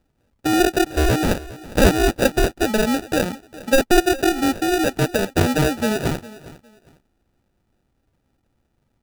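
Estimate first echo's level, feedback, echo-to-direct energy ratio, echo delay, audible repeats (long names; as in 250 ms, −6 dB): −18.5 dB, 25%, −18.0 dB, 407 ms, 2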